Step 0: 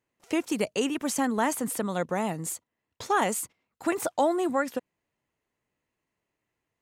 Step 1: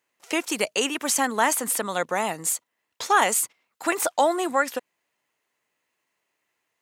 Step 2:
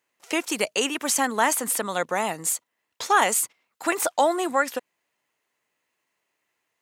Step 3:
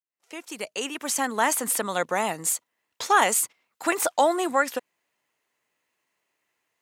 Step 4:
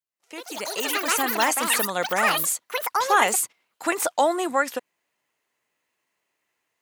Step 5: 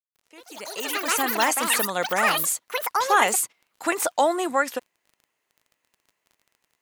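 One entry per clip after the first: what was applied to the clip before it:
HPF 1000 Hz 6 dB/oct; gain +9 dB
nothing audible
opening faded in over 1.69 s
echoes that change speed 0.158 s, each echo +7 st, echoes 3
opening faded in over 1.21 s; crackle 26/s -43 dBFS

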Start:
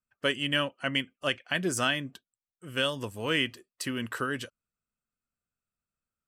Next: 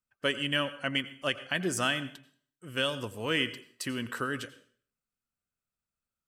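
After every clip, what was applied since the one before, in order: plate-style reverb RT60 0.52 s, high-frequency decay 0.9×, pre-delay 75 ms, DRR 14.5 dB; gain -1.5 dB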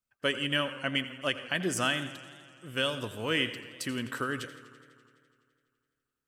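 warbling echo 84 ms, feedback 78%, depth 109 cents, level -17.5 dB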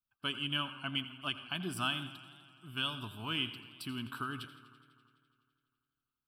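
fixed phaser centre 1900 Hz, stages 6; gain -3 dB

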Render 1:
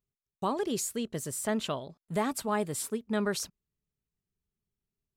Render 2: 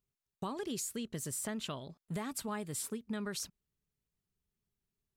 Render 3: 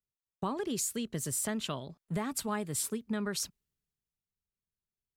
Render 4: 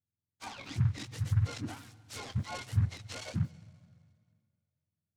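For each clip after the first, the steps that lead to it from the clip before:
dynamic EQ 620 Hz, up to -7 dB, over -44 dBFS, Q 0.74; compressor, threshold -35 dBFS, peak gain reduction 7.5 dB
three-band expander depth 40%; gain +4.5 dB
spectrum mirrored in octaves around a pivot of 950 Hz; reverb RT60 2.2 s, pre-delay 0.11 s, DRR 18.5 dB; noise-modulated delay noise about 1300 Hz, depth 0.051 ms; gain -5 dB

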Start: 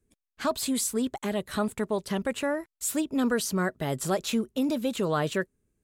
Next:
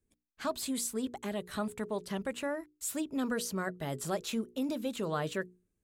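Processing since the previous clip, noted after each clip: notches 60/120/180/240/300/360/420/480 Hz; gain -6.5 dB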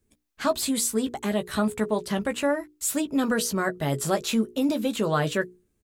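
doubler 14 ms -8 dB; gain +9 dB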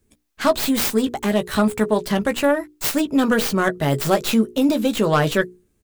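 tracing distortion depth 0.23 ms; gain +6.5 dB

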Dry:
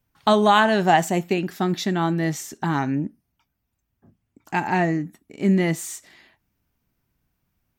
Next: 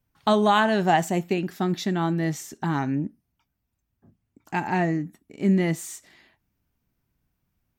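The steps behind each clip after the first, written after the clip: low shelf 390 Hz +3 dB; gain -4 dB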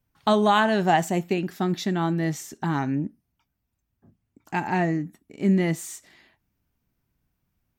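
nothing audible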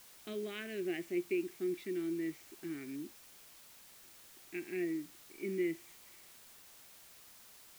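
double band-pass 900 Hz, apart 2.7 oct; added noise white -53 dBFS; gain -5 dB

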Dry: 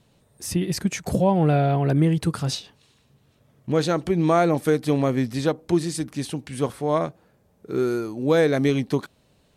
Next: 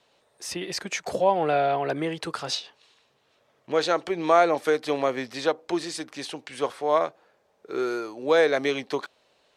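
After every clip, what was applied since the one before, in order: three-band isolator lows -23 dB, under 410 Hz, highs -14 dB, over 6600 Hz; gain +2.5 dB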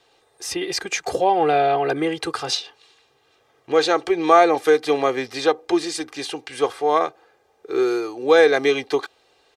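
comb 2.5 ms, depth 65%; gain +4 dB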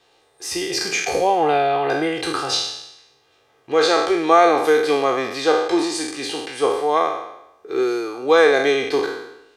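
spectral trails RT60 0.86 s; gain -1 dB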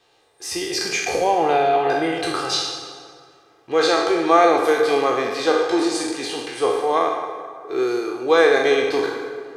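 plate-style reverb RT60 2.3 s, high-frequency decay 0.6×, pre-delay 0 ms, DRR 6 dB; gain -1.5 dB

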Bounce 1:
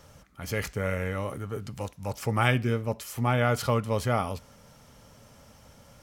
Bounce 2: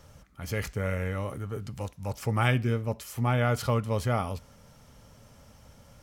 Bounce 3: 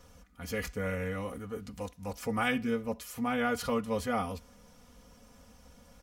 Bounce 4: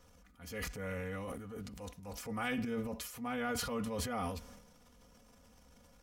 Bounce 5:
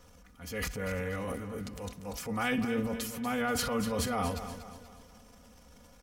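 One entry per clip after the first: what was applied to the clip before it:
low shelf 120 Hz +6.5 dB; gain -2.5 dB
comb 4.1 ms, depth 89%; gain -4.5 dB
transient shaper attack -5 dB, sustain +10 dB; gain -6.5 dB
feedback echo 0.239 s, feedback 44%, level -11 dB; gain +5.5 dB

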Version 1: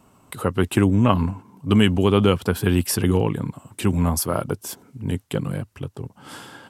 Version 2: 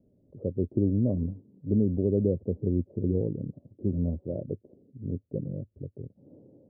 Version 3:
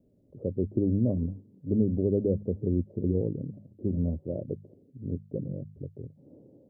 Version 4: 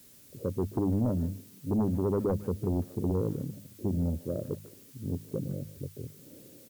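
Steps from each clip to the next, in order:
Chebyshev low-pass 580 Hz, order 5; gain -7 dB
de-hum 50.95 Hz, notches 4
added noise blue -56 dBFS; sine folder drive 5 dB, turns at -13.5 dBFS; speakerphone echo 0.15 s, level -16 dB; gain -8.5 dB

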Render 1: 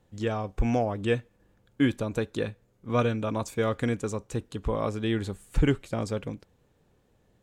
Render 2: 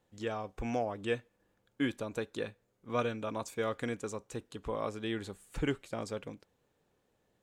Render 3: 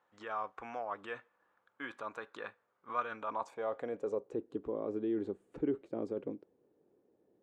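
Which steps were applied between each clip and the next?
low shelf 190 Hz -11.5 dB; gain -5 dB
in parallel at -2 dB: negative-ratio compressor -39 dBFS, ratio -0.5; on the sum: band-pass sweep 1200 Hz -> 350 Hz, 3.13–4.47; gain +2.5 dB

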